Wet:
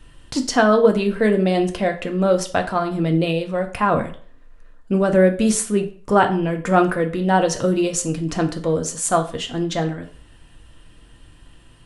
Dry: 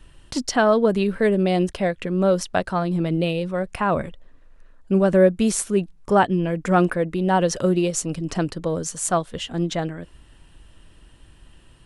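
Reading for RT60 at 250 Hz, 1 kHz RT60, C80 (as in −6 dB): 0.45 s, 0.45 s, 17.0 dB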